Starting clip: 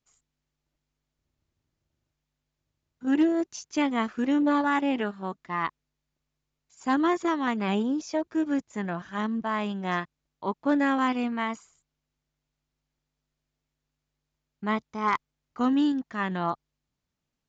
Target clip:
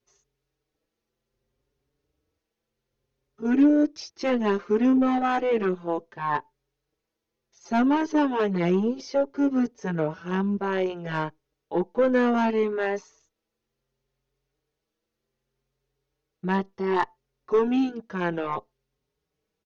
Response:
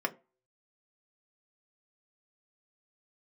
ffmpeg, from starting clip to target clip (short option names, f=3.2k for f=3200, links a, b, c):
-filter_complex "[0:a]equalizer=f=480:w=2.4:g=14,asetrate=39249,aresample=44100,asplit=2[a][b];[1:a]atrim=start_sample=2205,afade=t=out:st=0.24:d=0.01,atrim=end_sample=11025,asetrate=57330,aresample=44100[c];[b][c]afir=irnorm=-1:irlink=0,volume=-20.5dB[d];[a][d]amix=inputs=2:normalize=0,asoftclip=type=tanh:threshold=-14.5dB,asplit=2[e][f];[f]adelay=5.2,afreqshift=0.64[g];[e][g]amix=inputs=2:normalize=1,volume=3.5dB"